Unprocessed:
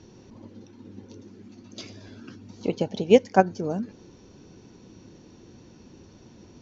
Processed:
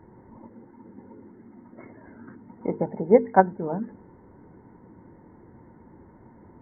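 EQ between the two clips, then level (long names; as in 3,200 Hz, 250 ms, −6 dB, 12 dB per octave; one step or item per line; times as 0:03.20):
linear-phase brick-wall low-pass 2,200 Hz
parametric band 910 Hz +11 dB 0.21 octaves
mains-hum notches 50/100/150/200/250/300/350/400/450 Hz
0.0 dB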